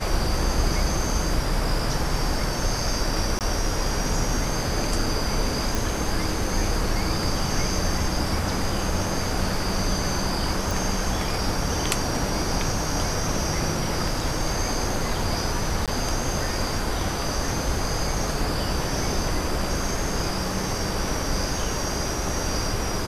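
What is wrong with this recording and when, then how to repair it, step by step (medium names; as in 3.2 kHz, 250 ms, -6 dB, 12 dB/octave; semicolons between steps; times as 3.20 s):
3.39–3.41 s: dropout 18 ms
5.75 s: pop
10.71 s: pop
15.86–15.88 s: dropout 17 ms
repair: de-click; interpolate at 3.39 s, 18 ms; interpolate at 15.86 s, 17 ms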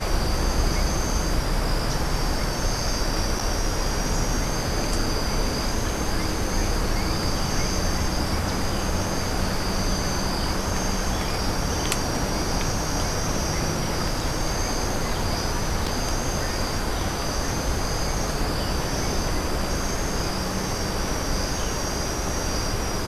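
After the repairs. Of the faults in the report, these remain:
nothing left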